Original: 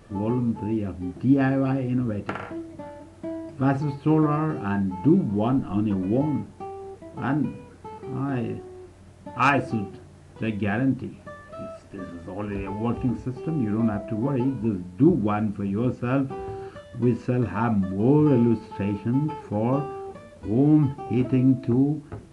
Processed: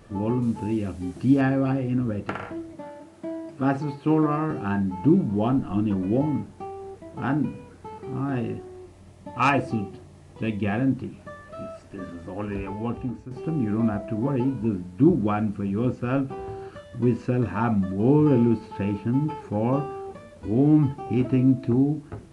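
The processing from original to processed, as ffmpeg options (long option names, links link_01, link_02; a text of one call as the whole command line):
ffmpeg -i in.wav -filter_complex "[0:a]asettb=1/sr,asplit=3[link_01][link_02][link_03];[link_01]atrim=end=0.424[link_04];[link_02]atrim=start=0.42:end=1.41,asetpts=PTS-STARTPTS,afade=type=in:duration=0.004:curve=qsin,afade=type=out:start_time=0.986:duration=0.004:curve=qsin,highshelf=frequency=3300:gain=10.5[link_05];[link_03]atrim=start=1.406[link_06];[link_04][link_05]acrossfade=duration=0.004:curve1=hsin:curve2=qsin[link_07];[link_07][link_06]acrossfade=duration=0.004:curve1=qsin:curve2=hsin,asettb=1/sr,asplit=3[link_08][link_09][link_10];[link_08]atrim=end=2.734[link_11];[link_09]atrim=start=2.73:end=4.51,asetpts=PTS-STARTPTS,afade=type=in:duration=0.004:curve=qsin,afade=type=out:start_time=1.776:duration=0.004:curve=qsin,highpass=160[link_12];[link_10]atrim=start=4.506[link_13];[link_11][link_12]acrossfade=duration=0.004:curve1=hsin:curve2=qsin[link_14];[link_14][link_13]acrossfade=duration=0.004:curve1=qsin:curve2=hsin,asettb=1/sr,asplit=3[link_15][link_16][link_17];[link_15]atrim=end=8.784[link_18];[link_16]atrim=start=8.78:end=10.81,asetpts=PTS-STARTPTS,afade=type=in:duration=0.004:curve=qsin,afade=type=out:start_time=2.026:duration=0.004:curve=qsin,bandreject=frequency=1500:width=5.4[link_19];[link_17]atrim=start=10.806[link_20];[link_18][link_19]acrossfade=duration=0.004:curve1=hsin:curve2=qsin[link_21];[link_21][link_20]acrossfade=duration=0.004:curve1=qsin:curve2=hsin,asettb=1/sr,asplit=3[link_22][link_23][link_24];[link_22]atrim=end=16.054[link_25];[link_23]atrim=start=16.05:end=16.73,asetpts=PTS-STARTPTS,afade=type=in:duration=0.004:curve=qsin,afade=type=out:start_time=0.676:duration=0.004:curve=qsin,tremolo=f=270:d=0.261[link_26];[link_24]atrim=start=16.726[link_27];[link_25][link_26]acrossfade=duration=0.004:curve1=hsin:curve2=qsin[link_28];[link_28][link_27]acrossfade=duration=0.004:curve1=qsin:curve2=hsin,asplit=2[link_29][link_30];[link_29]atrim=end=13.31,asetpts=PTS-STARTPTS,afade=type=out:start_time=12.55:duration=0.76:silence=0.316228[link_31];[link_30]atrim=start=13.31,asetpts=PTS-STARTPTS,afade=type=in:duration=0.004:curve=hsin:silence=0.316228[link_32];[link_31][link_32]concat=n=2:v=0:a=1" out.wav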